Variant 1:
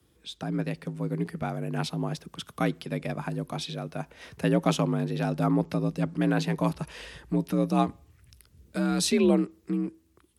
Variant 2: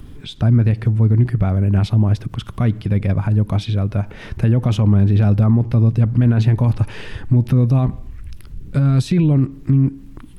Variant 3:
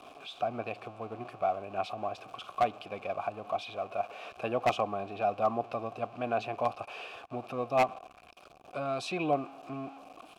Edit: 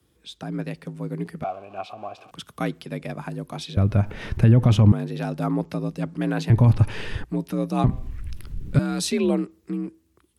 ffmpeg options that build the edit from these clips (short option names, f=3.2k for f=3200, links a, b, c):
-filter_complex "[1:a]asplit=3[a][b][c];[0:a]asplit=5[d][e][f][g][h];[d]atrim=end=1.442[i];[2:a]atrim=start=1.438:end=2.312[j];[e]atrim=start=2.308:end=3.772[k];[a]atrim=start=3.768:end=4.922[l];[f]atrim=start=4.918:end=6.502[m];[b]atrim=start=6.498:end=7.242[n];[g]atrim=start=7.238:end=7.842[o];[c]atrim=start=7.838:end=8.792[p];[h]atrim=start=8.788[q];[i][j]acrossfade=d=0.004:c1=hsin:c2=hsin[r];[r][k]acrossfade=d=0.004:c1=hsin:c2=hsin[s];[s][l]acrossfade=d=0.004:c1=hsin:c2=hsin[t];[t][m]acrossfade=d=0.004:c1=hsin:c2=hsin[u];[u][n]acrossfade=d=0.004:c1=hsin:c2=hsin[v];[v][o]acrossfade=d=0.004:c1=hsin:c2=hsin[w];[w][p]acrossfade=d=0.004:c1=hsin:c2=hsin[x];[x][q]acrossfade=d=0.004:c1=hsin:c2=hsin"